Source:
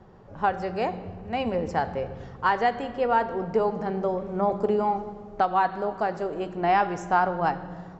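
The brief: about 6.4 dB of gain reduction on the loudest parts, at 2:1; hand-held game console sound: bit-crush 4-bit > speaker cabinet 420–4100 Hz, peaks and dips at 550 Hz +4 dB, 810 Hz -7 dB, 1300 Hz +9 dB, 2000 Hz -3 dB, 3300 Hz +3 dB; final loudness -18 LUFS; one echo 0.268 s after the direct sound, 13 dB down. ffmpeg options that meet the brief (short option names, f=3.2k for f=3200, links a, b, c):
-af "acompressor=threshold=-29dB:ratio=2,aecho=1:1:268:0.224,acrusher=bits=3:mix=0:aa=0.000001,highpass=420,equalizer=f=550:t=q:w=4:g=4,equalizer=f=810:t=q:w=4:g=-7,equalizer=f=1.3k:t=q:w=4:g=9,equalizer=f=2k:t=q:w=4:g=-3,equalizer=f=3.3k:t=q:w=4:g=3,lowpass=f=4.1k:w=0.5412,lowpass=f=4.1k:w=1.3066,volume=12.5dB"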